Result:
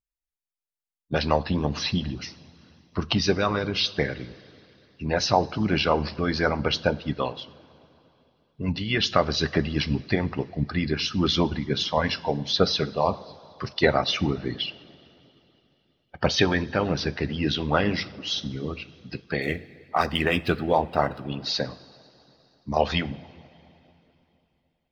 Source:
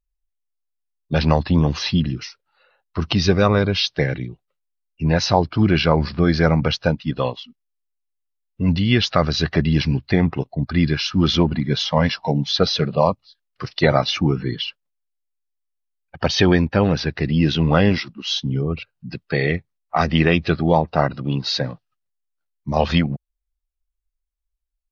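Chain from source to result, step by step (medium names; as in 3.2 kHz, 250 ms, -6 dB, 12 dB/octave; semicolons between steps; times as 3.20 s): 19.42–21.26 s: median filter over 5 samples; two-slope reverb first 0.43 s, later 3.2 s, from -16 dB, DRR 8 dB; harmonic-percussive split harmonic -14 dB; trim -2 dB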